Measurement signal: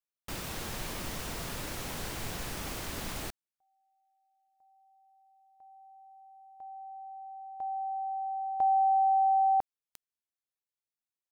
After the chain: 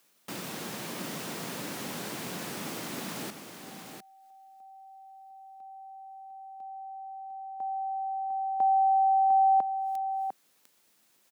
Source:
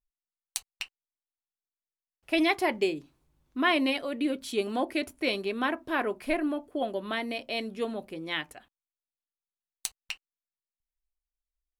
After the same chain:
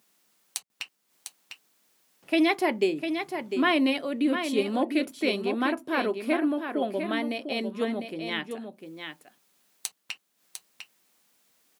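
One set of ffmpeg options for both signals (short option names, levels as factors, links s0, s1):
-af "highpass=f=180:w=0.5412,highpass=f=180:w=1.3066,lowshelf=f=230:g=10,acompressor=mode=upward:threshold=0.00891:ratio=2.5:attack=0.18:release=152:knee=2.83:detection=peak,aecho=1:1:701:0.422"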